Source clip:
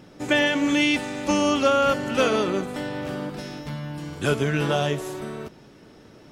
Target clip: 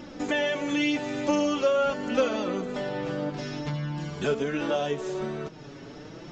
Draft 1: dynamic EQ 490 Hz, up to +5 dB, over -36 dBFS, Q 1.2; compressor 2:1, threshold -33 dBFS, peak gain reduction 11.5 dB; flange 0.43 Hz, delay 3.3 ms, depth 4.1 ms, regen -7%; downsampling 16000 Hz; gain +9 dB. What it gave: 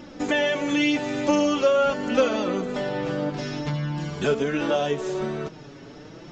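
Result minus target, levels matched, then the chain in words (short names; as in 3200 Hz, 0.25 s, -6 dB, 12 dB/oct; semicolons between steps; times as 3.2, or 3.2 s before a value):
compressor: peak gain reduction -4 dB
dynamic EQ 490 Hz, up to +5 dB, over -36 dBFS, Q 1.2; compressor 2:1, threshold -40.5 dBFS, peak gain reduction 15.5 dB; flange 0.43 Hz, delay 3.3 ms, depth 4.1 ms, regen -7%; downsampling 16000 Hz; gain +9 dB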